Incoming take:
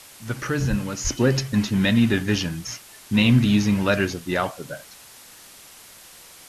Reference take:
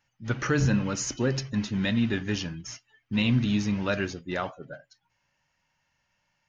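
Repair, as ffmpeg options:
-filter_complex "[0:a]asplit=3[a][b][c];[a]afade=t=out:st=0.69:d=0.02[d];[b]highpass=f=140:w=0.5412,highpass=f=140:w=1.3066,afade=t=in:st=0.69:d=0.02,afade=t=out:st=0.81:d=0.02[e];[c]afade=t=in:st=0.81:d=0.02[f];[d][e][f]amix=inputs=3:normalize=0,asplit=3[g][h][i];[g]afade=t=out:st=1.03:d=0.02[j];[h]highpass=f=140:w=0.5412,highpass=f=140:w=1.3066,afade=t=in:st=1.03:d=0.02,afade=t=out:st=1.15:d=0.02[k];[i]afade=t=in:st=1.15:d=0.02[l];[j][k][l]amix=inputs=3:normalize=0,afwtdn=0.0063,asetnsamples=n=441:p=0,asendcmd='1.05 volume volume -7dB',volume=0dB"

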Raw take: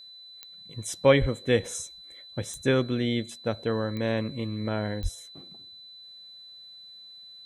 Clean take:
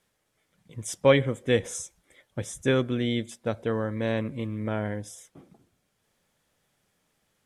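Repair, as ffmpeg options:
-filter_complex "[0:a]adeclick=t=4,bandreject=f=4k:w=30,asplit=3[a][b][c];[a]afade=t=out:st=1.2:d=0.02[d];[b]highpass=f=140:w=0.5412,highpass=f=140:w=1.3066,afade=t=in:st=1.2:d=0.02,afade=t=out:st=1.32:d=0.02[e];[c]afade=t=in:st=1.32:d=0.02[f];[d][e][f]amix=inputs=3:normalize=0,asplit=3[g][h][i];[g]afade=t=out:st=5.02:d=0.02[j];[h]highpass=f=140:w=0.5412,highpass=f=140:w=1.3066,afade=t=in:st=5.02:d=0.02,afade=t=out:st=5.14:d=0.02[k];[i]afade=t=in:st=5.14:d=0.02[l];[j][k][l]amix=inputs=3:normalize=0"

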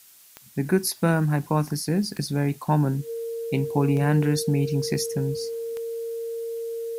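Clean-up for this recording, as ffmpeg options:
-af "adeclick=t=4,bandreject=f=460:w=30,afftdn=nr=23:nf=-46"

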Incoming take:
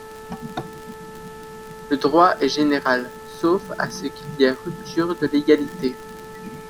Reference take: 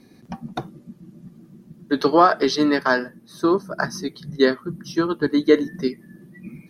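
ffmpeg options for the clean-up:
-af "adeclick=t=4,bandreject=f=437.8:t=h:w=4,bandreject=f=875.6:t=h:w=4,bandreject=f=1.3134k:t=h:w=4,bandreject=f=1.7512k:t=h:w=4,afftdn=nr=11:nf=-38"

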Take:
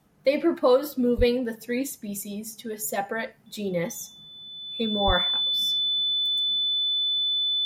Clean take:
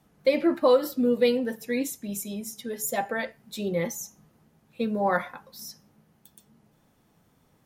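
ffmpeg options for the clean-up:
-filter_complex "[0:a]bandreject=f=3.5k:w=30,asplit=3[a][b][c];[a]afade=t=out:st=1.17:d=0.02[d];[b]highpass=f=140:w=0.5412,highpass=f=140:w=1.3066,afade=t=in:st=1.17:d=0.02,afade=t=out:st=1.29:d=0.02[e];[c]afade=t=in:st=1.29:d=0.02[f];[d][e][f]amix=inputs=3:normalize=0,asplit=3[g][h][i];[g]afade=t=out:st=5.06:d=0.02[j];[h]highpass=f=140:w=0.5412,highpass=f=140:w=1.3066,afade=t=in:st=5.06:d=0.02,afade=t=out:st=5.18:d=0.02[k];[i]afade=t=in:st=5.18:d=0.02[l];[j][k][l]amix=inputs=3:normalize=0"

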